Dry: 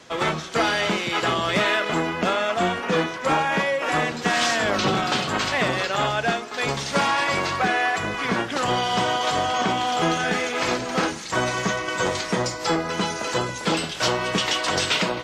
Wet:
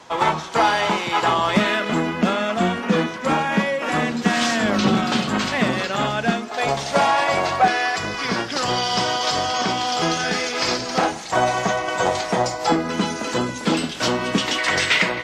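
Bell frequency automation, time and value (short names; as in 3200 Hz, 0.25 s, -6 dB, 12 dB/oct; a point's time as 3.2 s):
bell +12 dB 0.54 oct
910 Hz
from 1.57 s 220 Hz
from 6.49 s 700 Hz
from 7.68 s 5000 Hz
from 10.98 s 740 Hz
from 12.72 s 250 Hz
from 14.58 s 2000 Hz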